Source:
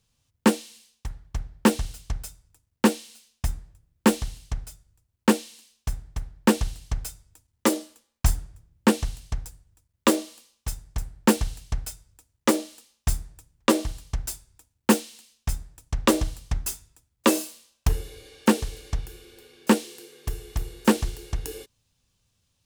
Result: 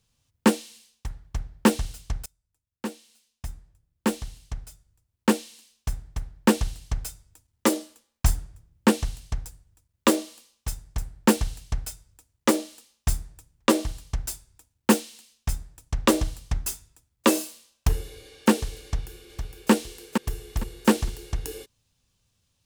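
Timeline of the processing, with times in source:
0:02.26–0:05.93: fade in, from −24 dB
0:18.83–0:19.71: delay throw 460 ms, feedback 25%, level −5.5 dB

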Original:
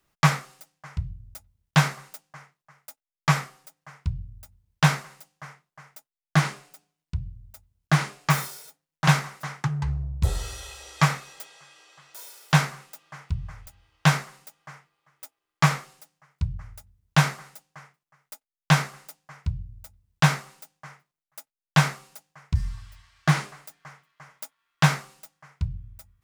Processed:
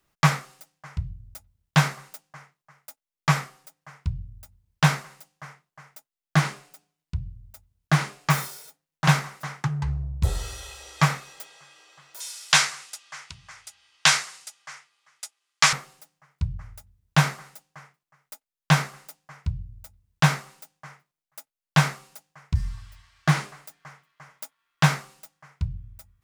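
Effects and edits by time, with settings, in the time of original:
0:12.20–0:15.73: meter weighting curve ITU-R 468

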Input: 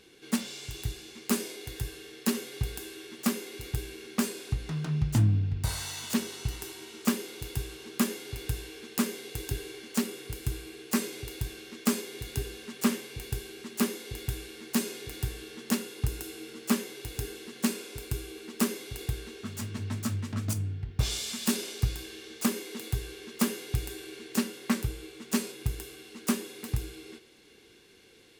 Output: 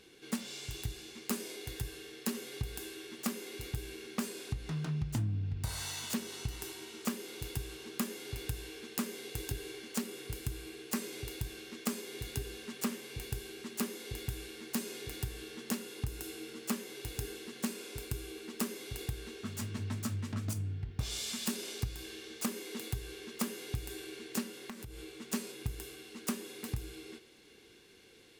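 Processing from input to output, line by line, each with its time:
0:24.55–0:25.13: downward compressor 12 to 1, threshold −39 dBFS
whole clip: downward compressor 3 to 1, threshold −31 dBFS; level −2 dB

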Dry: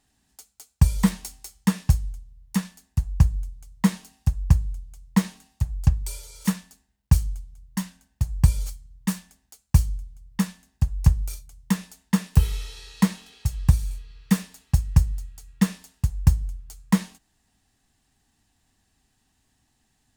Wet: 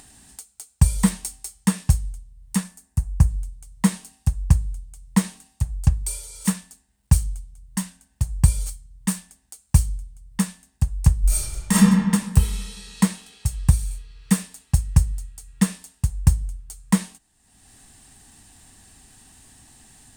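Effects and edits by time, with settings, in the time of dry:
0:02.63–0:03.29: parametric band 3,400 Hz −7 dB 1.2 octaves
0:11.21–0:11.74: thrown reverb, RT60 1.6 s, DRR −11 dB
whole clip: parametric band 8,700 Hz +11 dB 0.38 octaves; upward compression, threshold −37 dBFS; level +1 dB

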